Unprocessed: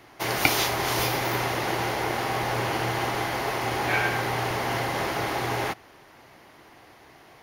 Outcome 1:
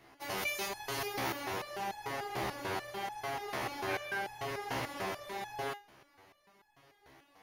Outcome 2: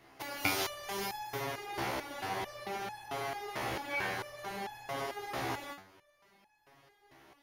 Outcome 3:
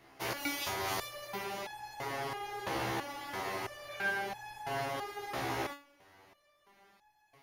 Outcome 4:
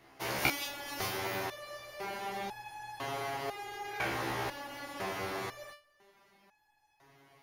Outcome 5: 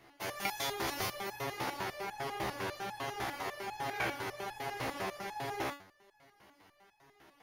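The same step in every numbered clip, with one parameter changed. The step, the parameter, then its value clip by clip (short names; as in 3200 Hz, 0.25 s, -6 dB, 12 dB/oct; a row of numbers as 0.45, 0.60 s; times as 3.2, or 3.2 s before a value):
stepped resonator, rate: 6.8, 4.5, 3, 2, 10 Hz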